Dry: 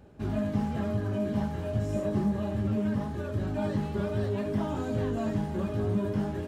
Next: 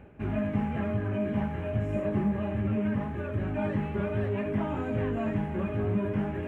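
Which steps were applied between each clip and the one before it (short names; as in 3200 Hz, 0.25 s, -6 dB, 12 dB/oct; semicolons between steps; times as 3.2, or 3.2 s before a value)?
resonant high shelf 3300 Hz -11 dB, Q 3; reverse; upward compressor, threshold -33 dBFS; reverse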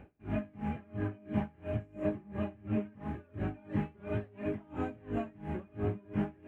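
small resonant body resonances 310/750/2400 Hz, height 7 dB, ringing for 90 ms; dB-linear tremolo 2.9 Hz, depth 28 dB; gain -1.5 dB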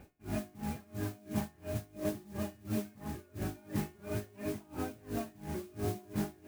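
resonator 360 Hz, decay 0.45 s, harmonics all, mix 70%; modulation noise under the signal 15 dB; gain +7.5 dB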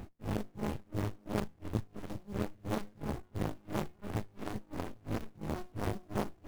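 tube stage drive 36 dB, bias 0.5; reverb removal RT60 0.71 s; running maximum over 65 samples; gain +13.5 dB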